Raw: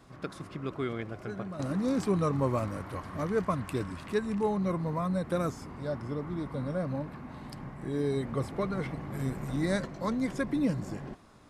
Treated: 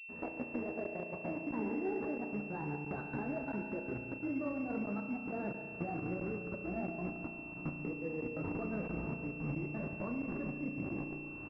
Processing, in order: gliding pitch shift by +8.5 st ending unshifted; dynamic EQ 300 Hz, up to +5 dB, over -44 dBFS, Q 1.7; level quantiser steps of 21 dB; transient shaper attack -3 dB, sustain -8 dB; compressor 10:1, threshold -50 dBFS, peak gain reduction 12 dB; flange 1.4 Hz, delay 9.2 ms, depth 8.6 ms, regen +52%; step gate ".xxxxxxxxx.x.xxx" 174 bpm -60 dB; echo 0.143 s -12 dB; spring tank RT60 2.5 s, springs 34 ms, chirp 35 ms, DRR 4.5 dB; crackling interface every 0.67 s, samples 512, zero, from 0.84; pulse-width modulation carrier 2700 Hz; gain +17.5 dB

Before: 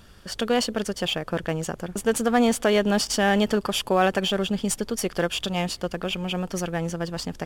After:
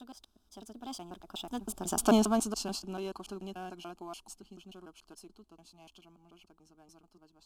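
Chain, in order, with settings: slices in reverse order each 0.134 s, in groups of 4; Doppler pass-by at 2.03, 28 m/s, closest 4.4 m; fixed phaser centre 510 Hz, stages 6; gain +2 dB

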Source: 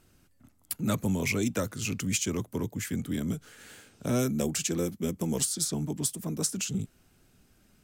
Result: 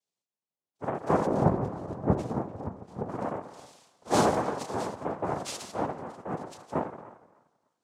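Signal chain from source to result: median-filter separation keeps harmonic; on a send at -7 dB: LPF 3600 Hz + reverb RT60 1.2 s, pre-delay 7 ms; on the sum: noise vocoder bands 2; 1.26–3.09 tilt shelf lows +8 dB, about 810 Hz; narrowing echo 0.298 s, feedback 43%, band-pass 1400 Hz, level -10 dB; three-band expander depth 70%

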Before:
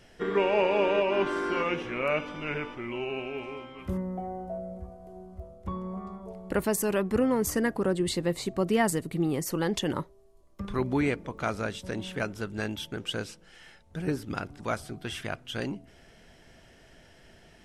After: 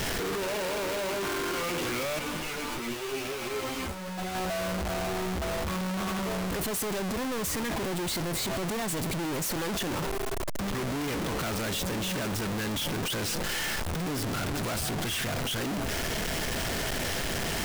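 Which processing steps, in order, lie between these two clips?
infinite clipping; 2.19–4.35 ensemble effect

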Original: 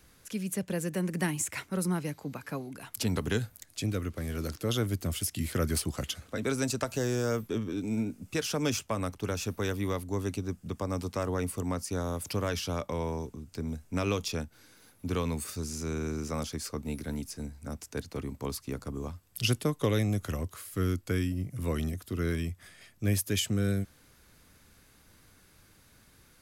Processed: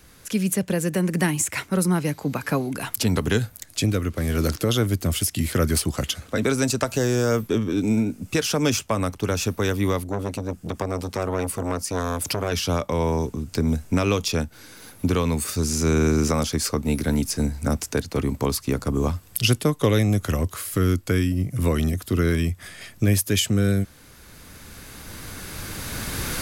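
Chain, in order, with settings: recorder AGC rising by 9.4 dB/s; 10.04–12.52 core saturation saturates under 770 Hz; gain +8 dB

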